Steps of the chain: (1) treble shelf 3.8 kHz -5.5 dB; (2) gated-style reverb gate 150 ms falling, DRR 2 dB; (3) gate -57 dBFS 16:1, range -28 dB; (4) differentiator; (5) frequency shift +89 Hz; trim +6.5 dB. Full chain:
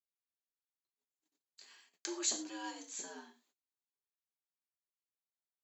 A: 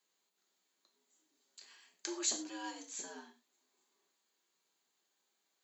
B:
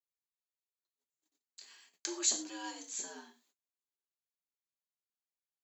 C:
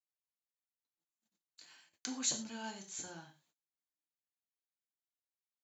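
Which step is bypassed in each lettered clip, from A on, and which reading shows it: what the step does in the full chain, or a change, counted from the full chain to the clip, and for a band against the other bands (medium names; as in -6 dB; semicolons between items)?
3, momentary loudness spread change +2 LU; 1, 8 kHz band +4.0 dB; 5, 500 Hz band -4.0 dB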